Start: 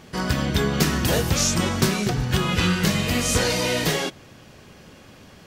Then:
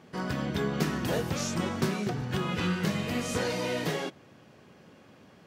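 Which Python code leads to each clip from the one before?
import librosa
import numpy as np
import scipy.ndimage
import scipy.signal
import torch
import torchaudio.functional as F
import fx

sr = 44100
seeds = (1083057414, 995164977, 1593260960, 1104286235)

y = scipy.signal.sosfilt(scipy.signal.butter(2, 130.0, 'highpass', fs=sr, output='sos'), x)
y = fx.high_shelf(y, sr, hz=2800.0, db=-10.0)
y = F.gain(torch.from_numpy(y), -6.0).numpy()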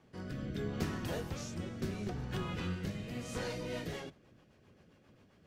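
y = fx.octave_divider(x, sr, octaves=1, level_db=-3.0)
y = fx.rotary_switch(y, sr, hz=0.75, then_hz=7.5, switch_at_s=3.25)
y = F.gain(torch.from_numpy(y), -8.0).numpy()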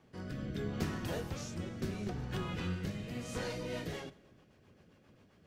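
y = fx.rev_plate(x, sr, seeds[0], rt60_s=1.3, hf_ratio=0.8, predelay_ms=0, drr_db=18.5)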